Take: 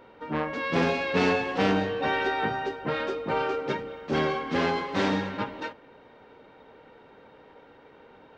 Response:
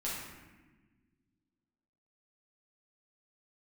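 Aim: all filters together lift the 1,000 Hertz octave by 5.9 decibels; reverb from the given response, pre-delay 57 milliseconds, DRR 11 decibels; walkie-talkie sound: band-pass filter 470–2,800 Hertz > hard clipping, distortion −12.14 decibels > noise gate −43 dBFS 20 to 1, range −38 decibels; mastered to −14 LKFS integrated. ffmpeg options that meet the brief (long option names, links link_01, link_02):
-filter_complex "[0:a]equalizer=frequency=1000:width_type=o:gain=8,asplit=2[link_01][link_02];[1:a]atrim=start_sample=2205,adelay=57[link_03];[link_02][link_03]afir=irnorm=-1:irlink=0,volume=-14.5dB[link_04];[link_01][link_04]amix=inputs=2:normalize=0,highpass=470,lowpass=2800,asoftclip=type=hard:threshold=-22dB,agate=range=-38dB:threshold=-43dB:ratio=20,volume=13.5dB"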